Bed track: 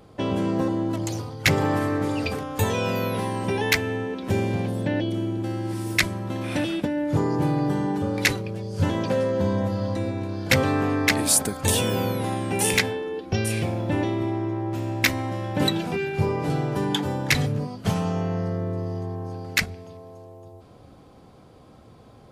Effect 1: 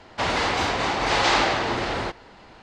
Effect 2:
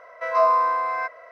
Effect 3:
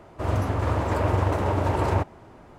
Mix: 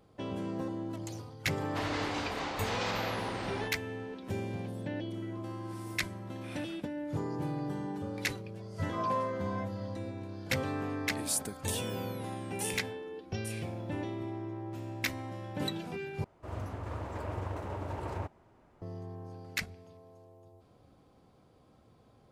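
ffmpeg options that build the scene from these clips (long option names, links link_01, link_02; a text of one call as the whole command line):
ffmpeg -i bed.wav -i cue0.wav -i cue1.wav -i cue2.wav -filter_complex "[2:a]asplit=2[link_01][link_02];[0:a]volume=-12.5dB[link_03];[1:a]alimiter=limit=-12.5dB:level=0:latency=1:release=71[link_04];[link_01]acompressor=threshold=-32dB:ratio=6:attack=3.2:release=140:knee=1:detection=peak[link_05];[link_02]asplit=2[link_06][link_07];[link_07]adelay=2.2,afreqshift=-2.1[link_08];[link_06][link_08]amix=inputs=2:normalize=1[link_09];[link_03]asplit=2[link_10][link_11];[link_10]atrim=end=16.244[link_12];[3:a]atrim=end=2.58,asetpts=PTS-STARTPTS,volume=-14.5dB[link_13];[link_11]atrim=start=18.816[link_14];[link_04]atrim=end=2.62,asetpts=PTS-STARTPTS,volume=-13dB,afade=type=in:duration=0.004:curve=hsin,afade=type=out:start_time=2.616:duration=0.004:curve=hsin,adelay=1570[link_15];[link_05]atrim=end=1.31,asetpts=PTS-STARTPTS,volume=-18dB,afade=type=in:duration=0.004:curve=hsin,afade=type=out:start_time=1.306:duration=0.004:curve=hsin,adelay=220941S[link_16];[link_09]atrim=end=1.31,asetpts=PTS-STARTPTS,volume=-13dB,afade=type=in:duration=0.004:curve=hsin,afade=type=out:start_time=1.306:duration=0.004:curve=hsin,adelay=8570[link_17];[link_12][link_13]acrossfade=duration=0.004:curve1=hsin:curve2=hsin[link_18];[link_18][link_14]acrossfade=duration=0.004:curve1=hsin:curve2=hsin[link_19];[link_19][link_15][link_16][link_17]amix=inputs=4:normalize=0" out.wav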